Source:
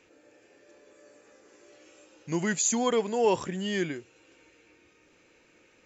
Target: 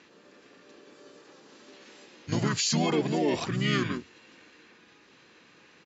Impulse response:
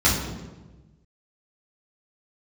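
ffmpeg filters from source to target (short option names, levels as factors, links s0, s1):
-filter_complex "[0:a]highpass=180,equalizer=f=320:t=q:w=4:g=-9,equalizer=f=550:t=q:w=4:g=-5,equalizer=f=940:t=q:w=4:g=-6,equalizer=f=2100:t=q:w=4:g=-7,equalizer=f=4000:t=q:w=4:g=6,lowpass=f=6600:w=0.5412,lowpass=f=6600:w=1.3066,alimiter=level_in=1.19:limit=0.0631:level=0:latency=1:release=33,volume=0.841,asplit=3[s0][s1][s2];[s1]asetrate=29433,aresample=44100,atempo=1.49831,volume=1[s3];[s2]asetrate=35002,aresample=44100,atempo=1.25992,volume=0.631[s4];[s0][s3][s4]amix=inputs=3:normalize=0,volume=1.58"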